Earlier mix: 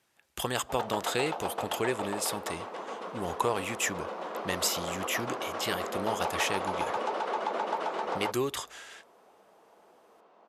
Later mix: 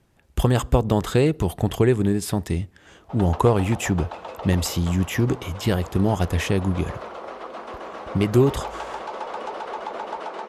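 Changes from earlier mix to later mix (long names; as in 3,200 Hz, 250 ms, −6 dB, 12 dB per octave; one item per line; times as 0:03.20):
speech: remove high-pass filter 1,500 Hz 6 dB per octave
background: entry +2.40 s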